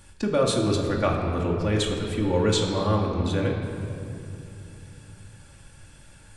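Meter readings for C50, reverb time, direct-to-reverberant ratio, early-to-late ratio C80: 3.5 dB, 2.9 s, -1.5 dB, 4.5 dB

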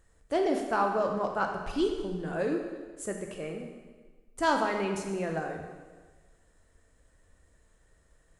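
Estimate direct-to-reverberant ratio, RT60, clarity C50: 2.0 dB, 1.4 s, 4.5 dB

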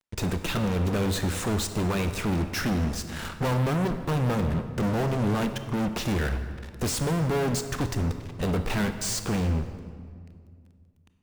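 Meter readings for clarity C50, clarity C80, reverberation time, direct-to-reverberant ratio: 9.5 dB, 10.5 dB, 2.1 s, 8.0 dB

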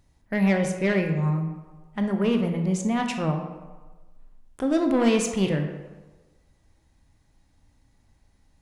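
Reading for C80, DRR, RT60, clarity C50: 8.5 dB, 4.5 dB, 1.2 s, 6.5 dB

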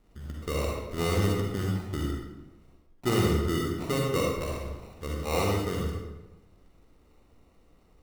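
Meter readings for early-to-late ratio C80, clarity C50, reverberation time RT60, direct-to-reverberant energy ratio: 2.5 dB, -1.0 dB, 1.0 s, -2.0 dB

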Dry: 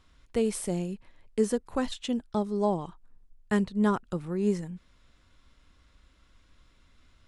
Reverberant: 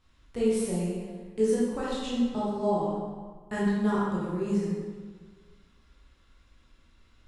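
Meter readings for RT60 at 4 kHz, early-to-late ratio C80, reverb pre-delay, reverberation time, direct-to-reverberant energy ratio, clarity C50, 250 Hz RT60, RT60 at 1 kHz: 1.1 s, 1.0 dB, 15 ms, 1.5 s, -8.0 dB, -1.5 dB, 1.6 s, 1.5 s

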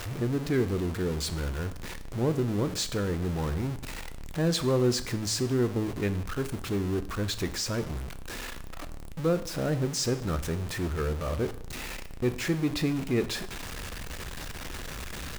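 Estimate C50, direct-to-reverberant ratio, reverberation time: 14.5 dB, 10.0 dB, 0.70 s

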